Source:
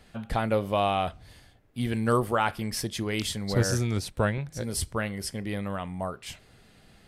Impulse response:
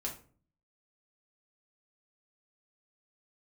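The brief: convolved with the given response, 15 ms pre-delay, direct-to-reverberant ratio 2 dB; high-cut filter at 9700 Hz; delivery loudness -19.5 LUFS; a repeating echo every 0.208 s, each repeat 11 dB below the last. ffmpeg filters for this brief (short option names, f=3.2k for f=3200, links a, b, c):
-filter_complex "[0:a]lowpass=9.7k,aecho=1:1:208|416|624:0.282|0.0789|0.0221,asplit=2[a][b];[1:a]atrim=start_sample=2205,adelay=15[c];[b][c]afir=irnorm=-1:irlink=0,volume=-2.5dB[d];[a][d]amix=inputs=2:normalize=0,volume=6.5dB"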